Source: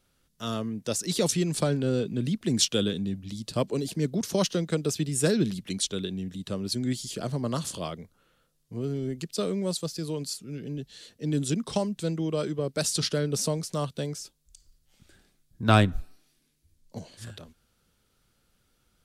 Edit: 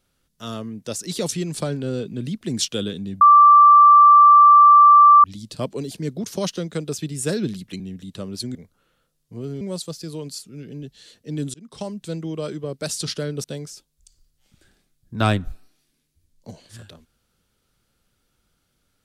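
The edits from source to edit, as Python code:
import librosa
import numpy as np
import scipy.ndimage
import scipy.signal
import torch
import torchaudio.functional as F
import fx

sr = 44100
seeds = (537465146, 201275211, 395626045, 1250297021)

y = fx.edit(x, sr, fx.insert_tone(at_s=3.21, length_s=2.03, hz=1170.0, db=-6.5),
    fx.cut(start_s=5.77, length_s=0.35),
    fx.cut(start_s=6.87, length_s=1.08),
    fx.cut(start_s=9.01, length_s=0.55),
    fx.fade_in_span(start_s=11.49, length_s=0.66, curve='qsin'),
    fx.cut(start_s=13.39, length_s=0.53), tone=tone)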